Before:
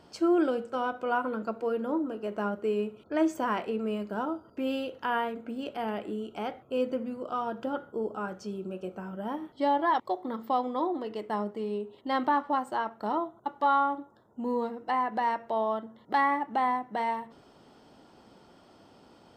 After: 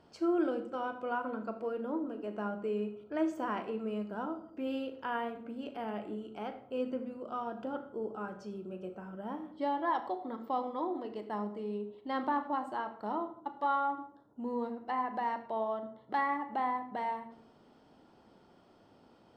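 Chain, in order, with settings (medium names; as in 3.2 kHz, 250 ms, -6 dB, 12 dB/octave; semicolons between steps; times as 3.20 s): treble shelf 4.6 kHz -8 dB; on a send: reverberation RT60 0.60 s, pre-delay 38 ms, DRR 9.5 dB; on the sum: trim -6 dB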